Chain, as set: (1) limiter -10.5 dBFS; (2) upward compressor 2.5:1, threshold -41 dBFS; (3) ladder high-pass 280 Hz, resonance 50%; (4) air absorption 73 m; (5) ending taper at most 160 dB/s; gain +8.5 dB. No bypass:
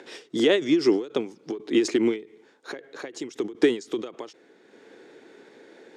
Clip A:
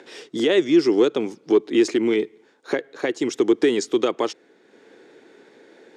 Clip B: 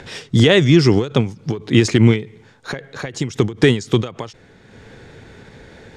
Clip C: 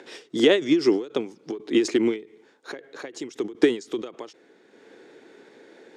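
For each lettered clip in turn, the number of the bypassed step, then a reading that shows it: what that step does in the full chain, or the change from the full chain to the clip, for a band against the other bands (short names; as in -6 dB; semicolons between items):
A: 5, crest factor change -3.5 dB; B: 3, 125 Hz band +20.0 dB; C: 1, momentary loudness spread change +2 LU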